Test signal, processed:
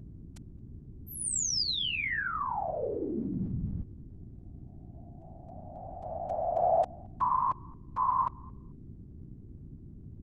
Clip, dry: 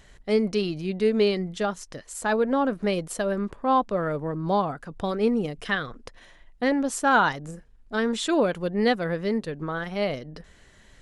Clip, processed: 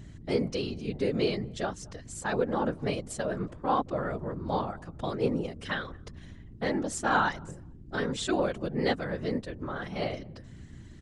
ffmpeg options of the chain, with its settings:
-filter_complex "[0:a]lowpass=f=8800:w=0.5412,lowpass=f=8800:w=1.3066,highshelf=f=5700:g=5.5,asplit=2[s0][s1];[s1]adelay=221,lowpass=f=820:p=1,volume=0.075,asplit=2[s2][s3];[s3]adelay=221,lowpass=f=820:p=1,volume=0.26[s4];[s2][s4]amix=inputs=2:normalize=0[s5];[s0][s5]amix=inputs=2:normalize=0,aeval=exprs='val(0)+0.0112*(sin(2*PI*60*n/s)+sin(2*PI*2*60*n/s)/2+sin(2*PI*3*60*n/s)/3+sin(2*PI*4*60*n/s)/4+sin(2*PI*5*60*n/s)/5)':c=same,afftfilt=real='hypot(re,im)*cos(2*PI*random(0))':imag='hypot(re,im)*sin(2*PI*random(1))':win_size=512:overlap=0.75"

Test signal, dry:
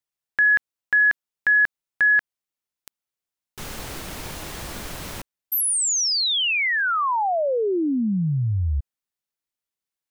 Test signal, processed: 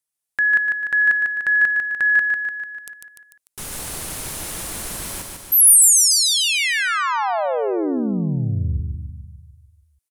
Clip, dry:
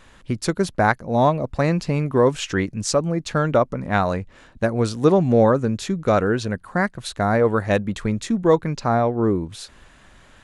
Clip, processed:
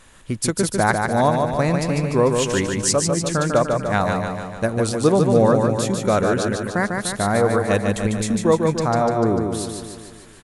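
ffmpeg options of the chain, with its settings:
-af "equalizer=f=10000:w=0.97:g=13,aecho=1:1:148|296|444|592|740|888|1036|1184:0.596|0.351|0.207|0.122|0.0722|0.0426|0.0251|0.0148,volume=0.891"

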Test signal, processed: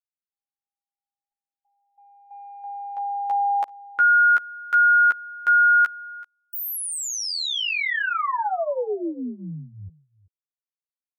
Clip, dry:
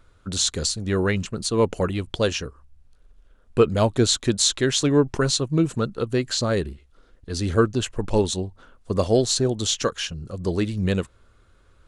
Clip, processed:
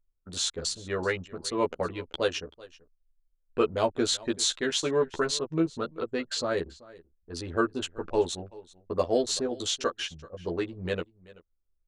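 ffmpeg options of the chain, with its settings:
-filter_complex "[0:a]anlmdn=63.1,bass=f=250:g=-13,treble=f=4000:g=-5,asplit=2[s0][s1];[s1]adelay=12,volume=0.75[s2];[s0][s2]amix=inputs=2:normalize=0,aecho=1:1:383:0.0891,volume=0.562"

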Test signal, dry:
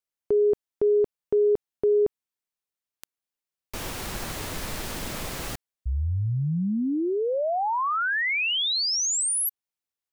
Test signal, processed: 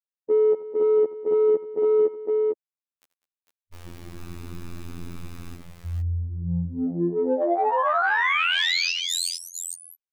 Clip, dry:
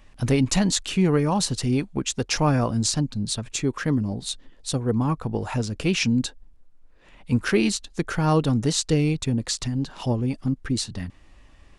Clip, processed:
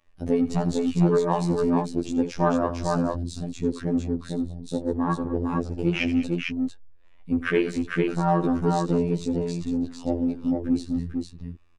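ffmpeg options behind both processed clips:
-filter_complex "[0:a]afwtdn=0.0501,afftfilt=real='hypot(re,im)*cos(PI*b)':imag='0':win_size=2048:overlap=0.75,asplit=2[s0][s1];[s1]asoftclip=type=tanh:threshold=0.0422,volume=0.316[s2];[s0][s2]amix=inputs=2:normalize=0,bass=f=250:g=-6,treble=f=4000:g=-4,aecho=1:1:83|200|452:0.178|0.141|0.668,volume=1.58"

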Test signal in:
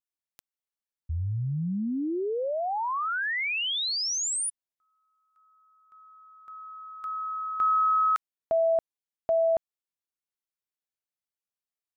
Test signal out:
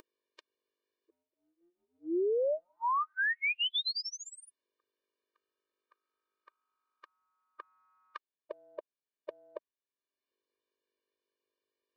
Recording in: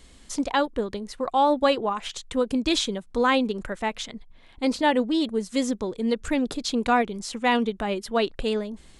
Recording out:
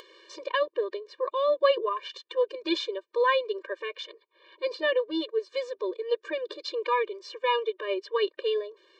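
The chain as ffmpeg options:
-af "lowpass=f=4400:w=0.5412,lowpass=f=4400:w=1.3066,bandreject=f=50:t=h:w=6,bandreject=f=100:t=h:w=6,bandreject=f=150:t=h:w=6,bandreject=f=200:t=h:w=6,bandreject=f=250:t=h:w=6,aeval=exprs='val(0)+0.00282*(sin(2*PI*50*n/s)+sin(2*PI*2*50*n/s)/2+sin(2*PI*3*50*n/s)/3+sin(2*PI*4*50*n/s)/4+sin(2*PI*5*50*n/s)/5)':c=same,acompressor=mode=upward:threshold=0.0282:ratio=2.5:attack=3.9:release=781:knee=2.83:detection=peak,afftfilt=real='re*eq(mod(floor(b*sr/1024/310),2),1)':imag='im*eq(mod(floor(b*sr/1024/310),2),1)':win_size=1024:overlap=0.75"

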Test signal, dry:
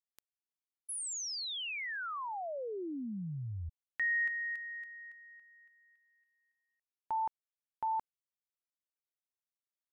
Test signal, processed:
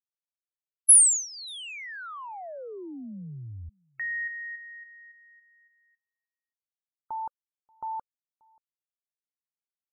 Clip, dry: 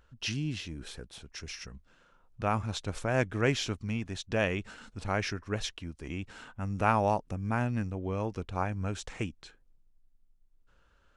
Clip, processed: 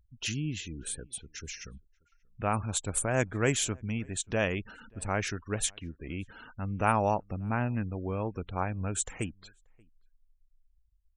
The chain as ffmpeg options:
-filter_complex "[0:a]afftfilt=real='re*gte(hypot(re,im),0.00447)':imag='im*gte(hypot(re,im),0.00447)':win_size=1024:overlap=0.75,aexciter=amount=15.8:drive=8:freq=8000,asplit=2[s0][s1];[s1]adelay=583.1,volume=0.0355,highshelf=f=4000:g=-13.1[s2];[s0][s2]amix=inputs=2:normalize=0"

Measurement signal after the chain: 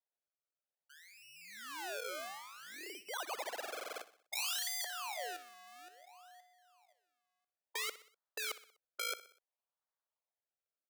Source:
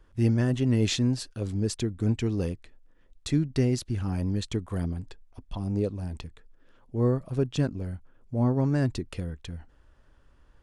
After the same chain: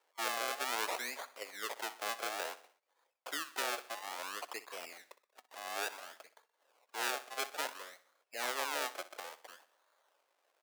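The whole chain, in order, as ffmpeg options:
-af "acrusher=samples=32:mix=1:aa=0.000001:lfo=1:lforange=32:lforate=0.58,highpass=f=560:w=0.5412,highpass=f=560:w=1.3066,afftfilt=real='re*lt(hypot(re,im),0.141)':imag='im*lt(hypot(re,im),0.141)':win_size=1024:overlap=0.75,aecho=1:1:62|124|186|248:0.158|0.0777|0.0381|0.0186,volume=0.668"

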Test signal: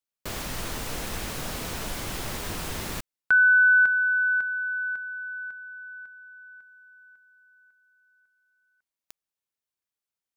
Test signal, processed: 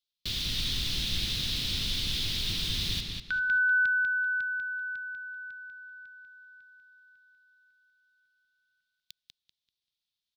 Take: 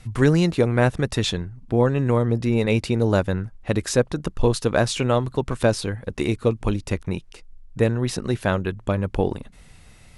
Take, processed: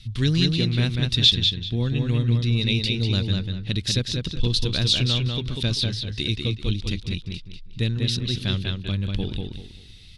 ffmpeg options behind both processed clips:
-filter_complex "[0:a]firequalizer=gain_entry='entry(100,0);entry(570,-19);entry(880,-19);entry(3600,13);entry(7200,-7)':delay=0.05:min_phase=1,asplit=2[s0][s1];[s1]adelay=194,lowpass=f=5000:p=1,volume=0.668,asplit=2[s2][s3];[s3]adelay=194,lowpass=f=5000:p=1,volume=0.29,asplit=2[s4][s5];[s5]adelay=194,lowpass=f=5000:p=1,volume=0.29,asplit=2[s6][s7];[s7]adelay=194,lowpass=f=5000:p=1,volume=0.29[s8];[s0][s2][s4][s6][s8]amix=inputs=5:normalize=0"

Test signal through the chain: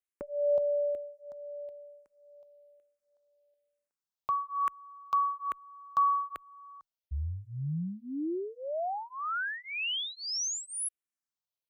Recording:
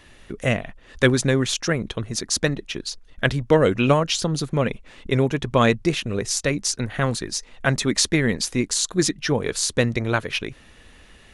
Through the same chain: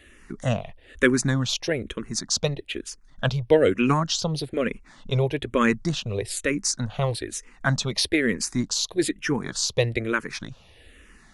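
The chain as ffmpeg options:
-filter_complex "[0:a]asplit=2[s0][s1];[s1]afreqshift=-1.1[s2];[s0][s2]amix=inputs=2:normalize=1"

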